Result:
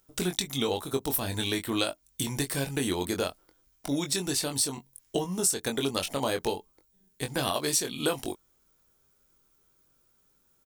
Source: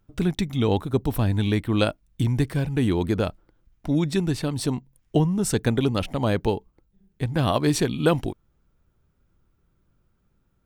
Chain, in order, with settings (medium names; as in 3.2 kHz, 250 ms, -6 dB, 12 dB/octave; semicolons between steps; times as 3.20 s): tone controls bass -13 dB, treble +15 dB; compression 4:1, threshold -26 dBFS, peak gain reduction 13 dB; doubling 22 ms -6 dB